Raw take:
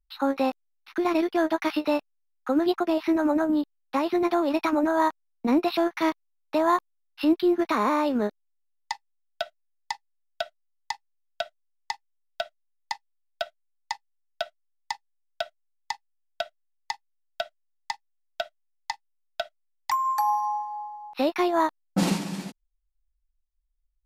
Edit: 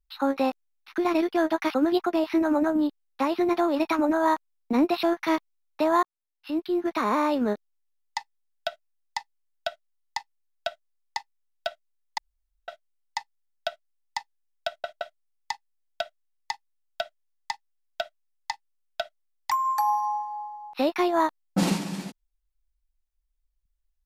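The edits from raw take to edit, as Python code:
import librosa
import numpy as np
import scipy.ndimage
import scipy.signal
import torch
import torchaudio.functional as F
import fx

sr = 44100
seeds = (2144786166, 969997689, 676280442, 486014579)

y = fx.edit(x, sr, fx.cut(start_s=1.74, length_s=0.74),
    fx.fade_in_span(start_s=6.77, length_s=1.18),
    fx.room_tone_fill(start_s=12.92, length_s=0.5),
    fx.stutter(start_s=15.41, slice_s=0.17, count=3), tone=tone)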